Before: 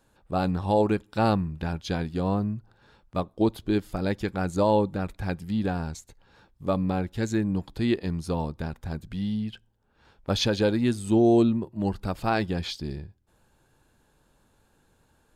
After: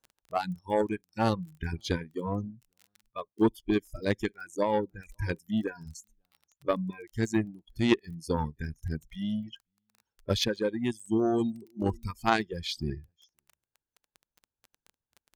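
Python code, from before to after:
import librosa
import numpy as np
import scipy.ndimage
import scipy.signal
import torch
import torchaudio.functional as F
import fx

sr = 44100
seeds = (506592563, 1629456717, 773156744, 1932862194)

p1 = x + fx.echo_single(x, sr, ms=533, db=-20.5, dry=0)
p2 = fx.rider(p1, sr, range_db=4, speed_s=0.5)
p3 = fx.noise_reduce_blind(p2, sr, reduce_db=21)
p4 = fx.cheby_harmonics(p3, sr, harmonics=(3,), levels_db=(-14,), full_scale_db=-11.5)
p5 = fx.dmg_crackle(p4, sr, seeds[0], per_s=18.0, level_db=-43.0)
p6 = fx.dereverb_blind(p5, sr, rt60_s=1.4)
y = p6 * 10.0 ** (4.5 / 20.0)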